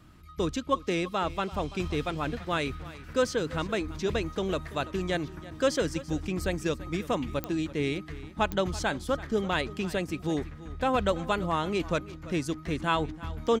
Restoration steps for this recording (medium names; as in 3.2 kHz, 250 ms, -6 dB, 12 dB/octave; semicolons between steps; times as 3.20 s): de-click; inverse comb 335 ms -17.5 dB